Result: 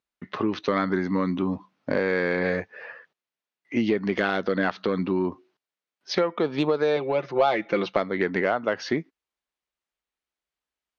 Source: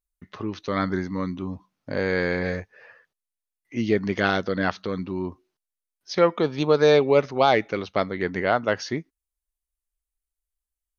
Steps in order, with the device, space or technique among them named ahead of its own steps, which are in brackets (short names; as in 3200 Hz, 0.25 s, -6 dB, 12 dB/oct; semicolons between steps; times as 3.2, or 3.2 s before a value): AM radio (BPF 180–3700 Hz; compressor 10:1, threshold -28 dBFS, peak gain reduction 16 dB; soft clip -18.5 dBFS, distortion -25 dB); 6.96–7.97 comb 5.8 ms, depth 65%; gain +9 dB